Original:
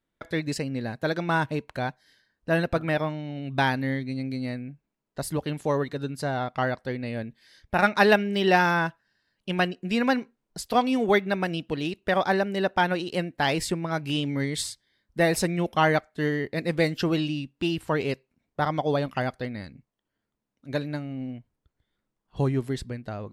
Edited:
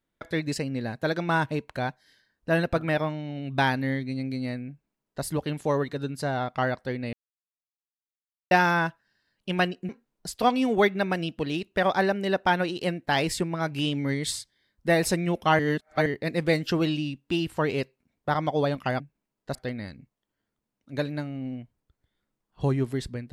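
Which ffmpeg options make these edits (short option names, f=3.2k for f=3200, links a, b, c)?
-filter_complex "[0:a]asplit=8[a][b][c][d][e][f][g][h];[a]atrim=end=7.13,asetpts=PTS-STARTPTS,afade=t=out:st=7.126:d=0.004:c=hsin[i];[b]atrim=start=7.13:end=8.51,asetpts=PTS-STARTPTS,volume=0[j];[c]atrim=start=8.51:end=9.892,asetpts=PTS-STARTPTS,afade=t=in:d=0.004:c=hsin[k];[d]atrim=start=10.198:end=15.902[l];[e]atrim=start=15.898:end=16.372,asetpts=PTS-STARTPTS,areverse[m];[f]atrim=start=16.368:end=19.312[n];[g]atrim=start=4.688:end=5.242[o];[h]atrim=start=19.308[p];[i][j][k]concat=n=3:v=0:a=1[q];[q][l]acrossfade=d=0.004:c1=hsin:c2=hsin[r];[r][m]acrossfade=d=0.004:c1=hsin:c2=hsin[s];[s][n]acrossfade=d=0.004:c1=hsin:c2=hsin[t];[t][o]acrossfade=d=0.004:c1=hsin:c2=hsin[u];[u][p]acrossfade=d=0.004:c1=hsin:c2=hsin"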